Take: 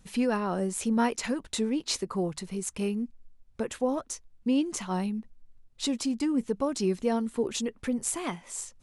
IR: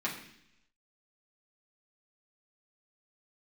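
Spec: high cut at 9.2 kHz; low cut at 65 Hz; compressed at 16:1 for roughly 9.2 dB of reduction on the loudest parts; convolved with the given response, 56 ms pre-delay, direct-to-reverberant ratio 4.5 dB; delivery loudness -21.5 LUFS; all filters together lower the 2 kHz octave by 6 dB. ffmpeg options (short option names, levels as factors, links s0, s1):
-filter_complex "[0:a]highpass=65,lowpass=9200,equalizer=f=2000:t=o:g=-8,acompressor=threshold=0.0282:ratio=16,asplit=2[s0][s1];[1:a]atrim=start_sample=2205,adelay=56[s2];[s1][s2]afir=irnorm=-1:irlink=0,volume=0.299[s3];[s0][s3]amix=inputs=2:normalize=0,volume=5.01"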